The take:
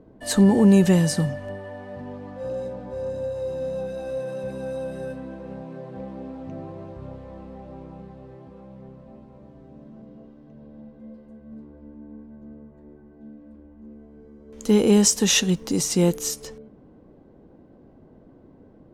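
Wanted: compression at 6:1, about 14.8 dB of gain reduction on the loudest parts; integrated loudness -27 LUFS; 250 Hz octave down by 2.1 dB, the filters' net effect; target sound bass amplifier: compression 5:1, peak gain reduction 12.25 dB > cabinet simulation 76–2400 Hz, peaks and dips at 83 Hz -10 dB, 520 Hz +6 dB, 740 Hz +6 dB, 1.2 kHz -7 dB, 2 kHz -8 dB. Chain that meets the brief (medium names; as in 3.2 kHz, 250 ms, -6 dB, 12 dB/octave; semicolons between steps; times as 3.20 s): peaking EQ 250 Hz -3 dB; compression 6:1, threshold -30 dBFS; compression 5:1, threshold -40 dBFS; cabinet simulation 76–2400 Hz, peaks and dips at 83 Hz -10 dB, 520 Hz +6 dB, 740 Hz +6 dB, 1.2 kHz -7 dB, 2 kHz -8 dB; trim +14.5 dB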